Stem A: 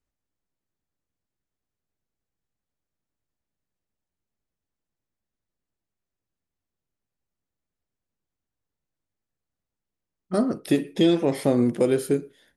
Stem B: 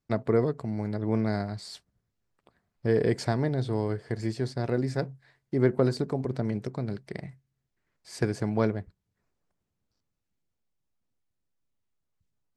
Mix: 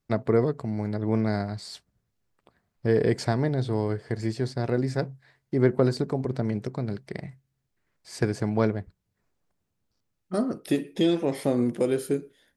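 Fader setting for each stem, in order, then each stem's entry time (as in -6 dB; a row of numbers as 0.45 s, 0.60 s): -3.5 dB, +2.0 dB; 0.00 s, 0.00 s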